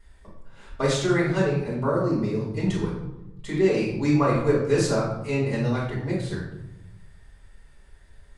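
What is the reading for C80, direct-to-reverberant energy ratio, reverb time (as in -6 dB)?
6.0 dB, -6.5 dB, 0.90 s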